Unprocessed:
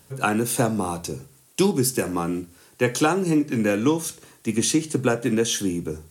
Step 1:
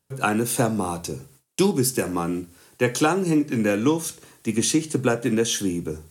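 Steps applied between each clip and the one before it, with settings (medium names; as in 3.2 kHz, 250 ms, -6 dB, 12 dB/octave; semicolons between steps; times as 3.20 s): gate with hold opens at -41 dBFS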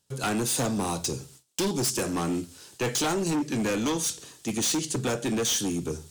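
high-order bell 5 kHz +8.5 dB; in parallel at -2 dB: gain riding within 4 dB 0.5 s; on the sum: overload inside the chain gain 16 dB; trim -7.5 dB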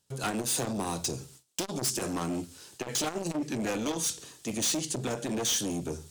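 transformer saturation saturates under 270 Hz; trim -1.5 dB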